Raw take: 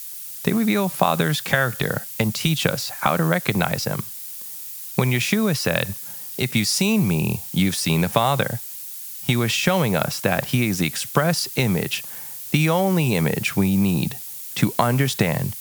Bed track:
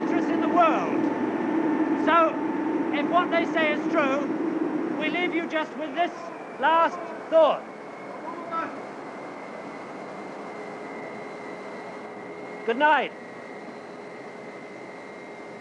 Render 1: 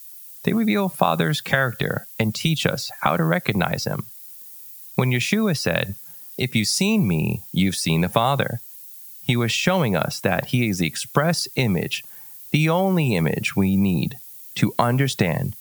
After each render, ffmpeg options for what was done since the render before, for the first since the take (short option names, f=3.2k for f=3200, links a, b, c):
-af "afftdn=nr=11:nf=-35"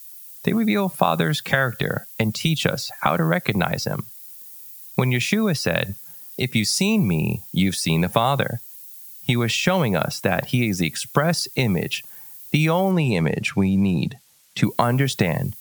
-filter_complex "[0:a]asettb=1/sr,asplit=3[a][b][c];[a]atrim=end=12.914[d];[b]atrim=start=12.91:end=14.64,asetpts=PTS-STARTPTS,afade=t=in:d=0.004:c=qsin,afade=t=out:st=1.726:d=0.004:c=qsin,adynamicsmooth=sensitivity=7:basefreq=6.8k[e];[c]atrim=start=14.636[f];[d][e]acrossfade=d=0.004:c1=hsin:c2=qsin[g];[g][f]acrossfade=d=0.004:c1=qsin:c2=hsin"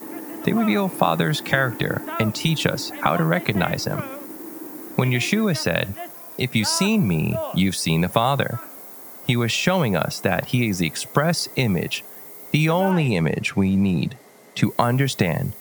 -filter_complex "[1:a]volume=-10.5dB[a];[0:a][a]amix=inputs=2:normalize=0"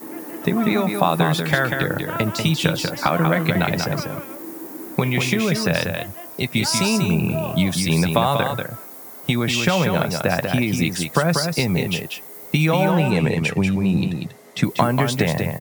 -filter_complex "[0:a]asplit=2[a][b];[b]adelay=12,volume=-12dB[c];[a][c]amix=inputs=2:normalize=0,aecho=1:1:190:0.531"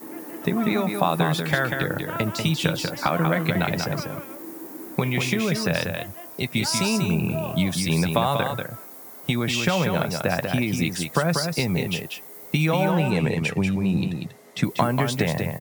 -af "volume=-3.5dB"